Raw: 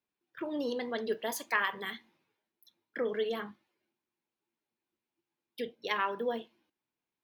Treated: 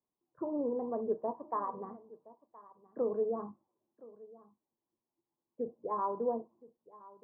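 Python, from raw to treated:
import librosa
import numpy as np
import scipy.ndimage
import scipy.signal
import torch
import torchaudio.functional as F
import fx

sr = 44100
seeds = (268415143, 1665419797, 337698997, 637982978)

p1 = scipy.signal.sosfilt(scipy.signal.cheby1(5, 1.0, 1100.0, 'lowpass', fs=sr, output='sos'), x)
p2 = p1 + fx.echo_single(p1, sr, ms=1020, db=-20.5, dry=0)
y = p2 * 10.0 ** (1.0 / 20.0)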